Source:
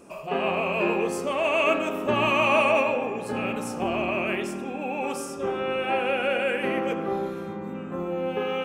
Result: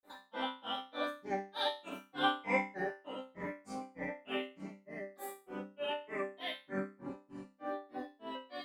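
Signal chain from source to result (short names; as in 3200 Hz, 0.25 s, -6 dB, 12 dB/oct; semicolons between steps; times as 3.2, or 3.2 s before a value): grains 0.218 s, grains 3.3/s, spray 13 ms, pitch spread up and down by 7 st; resonator bank G3 sus4, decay 0.33 s; gain +8.5 dB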